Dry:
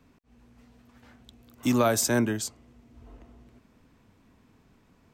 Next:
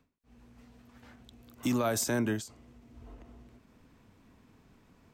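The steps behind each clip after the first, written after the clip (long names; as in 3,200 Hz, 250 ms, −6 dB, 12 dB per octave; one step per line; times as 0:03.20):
brickwall limiter −21 dBFS, peak gain reduction 8.5 dB
every ending faded ahead of time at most 140 dB per second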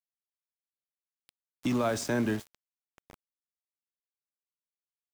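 high-frequency loss of the air 79 metres
coupled-rooms reverb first 0.31 s, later 3.9 s, from −18 dB, DRR 14.5 dB
centre clipping without the shift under −40.5 dBFS
level +1.5 dB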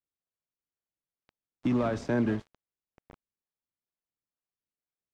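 in parallel at −9 dB: sample-and-hold swept by an LFO 32×, swing 160% 2.2 Hz
on the sum: head-to-tape spacing loss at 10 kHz 23 dB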